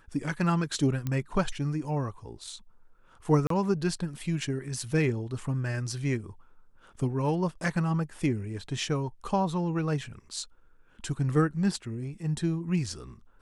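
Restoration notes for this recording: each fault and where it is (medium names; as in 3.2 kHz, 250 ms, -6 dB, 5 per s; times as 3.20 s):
1.07 s: pop -18 dBFS
3.47–3.50 s: dropout 33 ms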